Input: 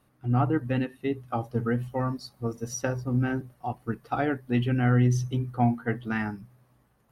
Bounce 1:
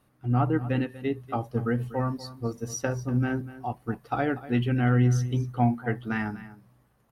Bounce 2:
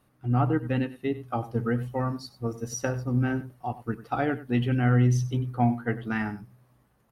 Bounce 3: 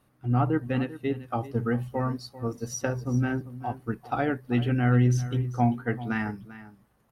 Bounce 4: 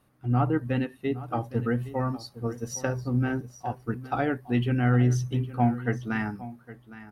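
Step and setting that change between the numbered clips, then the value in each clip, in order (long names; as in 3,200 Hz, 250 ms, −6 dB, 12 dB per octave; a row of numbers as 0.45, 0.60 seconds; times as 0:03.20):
single-tap delay, delay time: 242, 96, 393, 812 milliseconds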